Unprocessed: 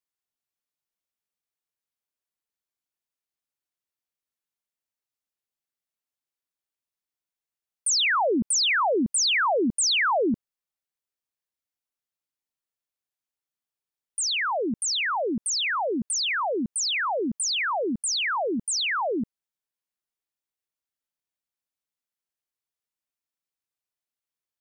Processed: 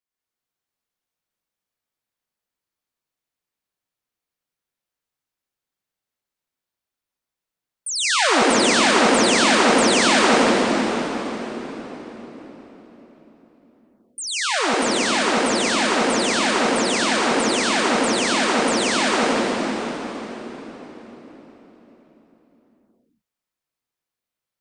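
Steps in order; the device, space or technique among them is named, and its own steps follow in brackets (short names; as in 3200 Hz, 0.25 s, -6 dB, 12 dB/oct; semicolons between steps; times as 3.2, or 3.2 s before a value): swimming-pool hall (reverb RT60 4.6 s, pre-delay 86 ms, DRR -7 dB; high shelf 4600 Hz -5 dB)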